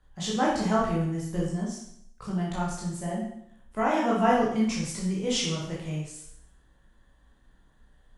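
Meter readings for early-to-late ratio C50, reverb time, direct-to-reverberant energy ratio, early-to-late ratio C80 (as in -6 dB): 1.5 dB, 0.70 s, -6.0 dB, 5.5 dB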